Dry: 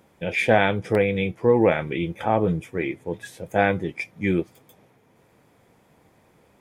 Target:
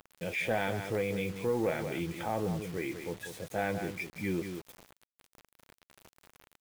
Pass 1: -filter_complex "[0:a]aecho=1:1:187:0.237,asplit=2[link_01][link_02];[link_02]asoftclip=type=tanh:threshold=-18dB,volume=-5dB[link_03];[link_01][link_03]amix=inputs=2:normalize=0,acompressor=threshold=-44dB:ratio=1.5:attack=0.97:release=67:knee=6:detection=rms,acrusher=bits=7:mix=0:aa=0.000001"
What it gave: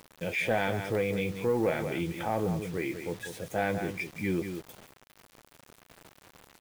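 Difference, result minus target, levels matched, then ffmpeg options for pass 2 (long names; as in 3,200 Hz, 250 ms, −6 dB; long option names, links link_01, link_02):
downward compressor: peak gain reduction −3 dB
-filter_complex "[0:a]aecho=1:1:187:0.237,asplit=2[link_01][link_02];[link_02]asoftclip=type=tanh:threshold=-18dB,volume=-5dB[link_03];[link_01][link_03]amix=inputs=2:normalize=0,acompressor=threshold=-53dB:ratio=1.5:attack=0.97:release=67:knee=6:detection=rms,acrusher=bits=7:mix=0:aa=0.000001"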